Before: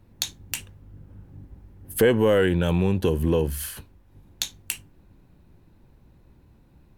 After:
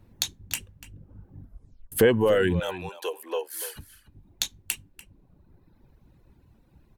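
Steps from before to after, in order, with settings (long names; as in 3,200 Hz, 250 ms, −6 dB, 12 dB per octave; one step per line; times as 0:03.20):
0:01.39: tape stop 0.53 s
0:02.60–0:03.76: high-pass filter 530 Hz 24 dB per octave
reverb reduction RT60 1.3 s
slap from a distant wall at 50 metres, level −14 dB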